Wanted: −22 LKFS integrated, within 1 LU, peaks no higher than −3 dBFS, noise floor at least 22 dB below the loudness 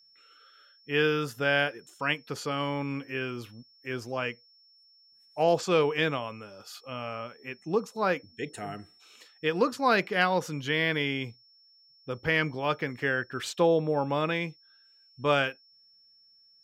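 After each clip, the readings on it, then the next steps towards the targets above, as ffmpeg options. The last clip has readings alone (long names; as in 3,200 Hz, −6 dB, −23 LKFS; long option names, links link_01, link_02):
interfering tone 5,400 Hz; level of the tone −58 dBFS; integrated loudness −29.0 LKFS; sample peak −11.0 dBFS; target loudness −22.0 LKFS
→ -af "bandreject=frequency=5400:width=30"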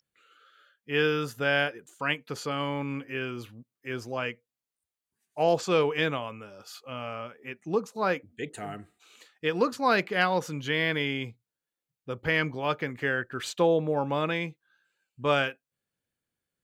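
interfering tone none found; integrated loudness −28.5 LKFS; sample peak −11.0 dBFS; target loudness −22.0 LKFS
→ -af "volume=6.5dB"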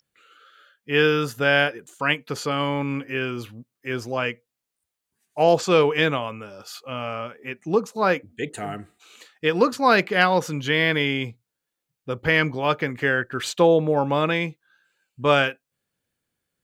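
integrated loudness −22.0 LKFS; sample peak −4.5 dBFS; background noise floor −84 dBFS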